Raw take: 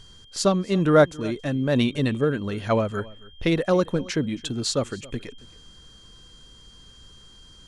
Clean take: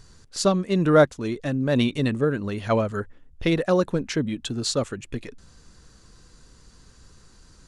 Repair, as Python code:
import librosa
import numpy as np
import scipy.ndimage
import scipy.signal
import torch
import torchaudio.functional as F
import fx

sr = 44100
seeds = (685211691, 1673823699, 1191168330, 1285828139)

y = fx.notch(x, sr, hz=3200.0, q=30.0)
y = fx.fix_echo_inverse(y, sr, delay_ms=273, level_db=-21.5)